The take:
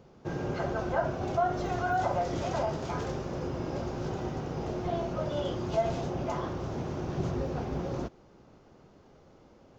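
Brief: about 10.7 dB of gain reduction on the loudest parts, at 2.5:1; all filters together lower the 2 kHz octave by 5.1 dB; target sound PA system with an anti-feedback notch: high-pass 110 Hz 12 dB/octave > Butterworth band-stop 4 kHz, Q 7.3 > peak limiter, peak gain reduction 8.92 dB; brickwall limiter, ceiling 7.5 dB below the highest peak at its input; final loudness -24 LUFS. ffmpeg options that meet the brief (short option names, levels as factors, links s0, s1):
-af "equalizer=f=2000:t=o:g=-8,acompressor=threshold=0.01:ratio=2.5,alimiter=level_in=3.76:limit=0.0631:level=0:latency=1,volume=0.266,highpass=110,asuperstop=centerf=4000:order=8:qfactor=7.3,volume=22.4,alimiter=limit=0.168:level=0:latency=1"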